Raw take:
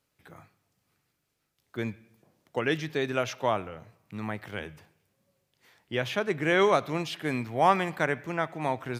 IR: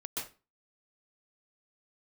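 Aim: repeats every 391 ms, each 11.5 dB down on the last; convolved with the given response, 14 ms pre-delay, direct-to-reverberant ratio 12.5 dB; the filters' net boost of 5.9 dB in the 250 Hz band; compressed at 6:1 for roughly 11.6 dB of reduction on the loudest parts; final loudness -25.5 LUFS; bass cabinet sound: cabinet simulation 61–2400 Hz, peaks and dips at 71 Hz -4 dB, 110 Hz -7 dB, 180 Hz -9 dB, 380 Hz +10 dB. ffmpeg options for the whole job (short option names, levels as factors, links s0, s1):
-filter_complex "[0:a]equalizer=f=250:t=o:g=4.5,acompressor=threshold=0.0355:ratio=6,aecho=1:1:391|782|1173:0.266|0.0718|0.0194,asplit=2[s0][s1];[1:a]atrim=start_sample=2205,adelay=14[s2];[s1][s2]afir=irnorm=-1:irlink=0,volume=0.2[s3];[s0][s3]amix=inputs=2:normalize=0,highpass=f=61:w=0.5412,highpass=f=61:w=1.3066,equalizer=f=71:t=q:w=4:g=-4,equalizer=f=110:t=q:w=4:g=-7,equalizer=f=180:t=q:w=4:g=-9,equalizer=f=380:t=q:w=4:g=10,lowpass=f=2400:w=0.5412,lowpass=f=2400:w=1.3066,volume=2.24"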